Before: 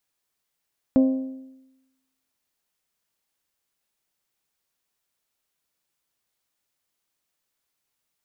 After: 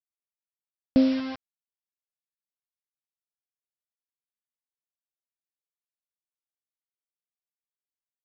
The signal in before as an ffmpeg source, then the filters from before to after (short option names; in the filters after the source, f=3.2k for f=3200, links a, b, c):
-f lavfi -i "aevalsrc='0.251*pow(10,-3*t/0.99)*sin(2*PI*263*t)+0.0841*pow(10,-3*t/0.804)*sin(2*PI*526*t)+0.0282*pow(10,-3*t/0.761)*sin(2*PI*631.2*t)+0.00944*pow(10,-3*t/0.712)*sin(2*PI*789*t)+0.00316*pow(10,-3*t/0.653)*sin(2*PI*1052*t)':d=1.55:s=44100"
-af "equalizer=f=960:t=o:w=0.53:g=-11.5,aresample=11025,acrusher=bits=5:mix=0:aa=0.000001,aresample=44100"